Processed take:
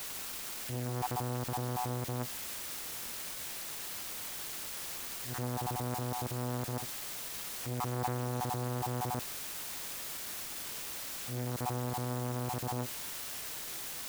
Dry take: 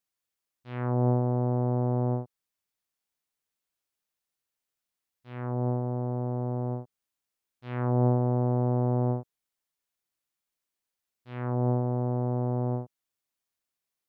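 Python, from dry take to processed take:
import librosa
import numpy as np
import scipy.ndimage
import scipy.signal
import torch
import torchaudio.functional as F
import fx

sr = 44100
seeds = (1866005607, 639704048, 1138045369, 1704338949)

p1 = fx.spec_dropout(x, sr, seeds[0], share_pct=28)
p2 = fx.highpass(p1, sr, hz=53.0, slope=6)
p3 = fx.over_compress(p2, sr, threshold_db=-35.0, ratio=-0.5)
p4 = p2 + (p3 * librosa.db_to_amplitude(0.5))
p5 = fx.quant_dither(p4, sr, seeds[1], bits=6, dither='triangular')
p6 = fx.transformer_sat(p5, sr, knee_hz=990.0)
y = p6 * librosa.db_to_amplitude(-5.0)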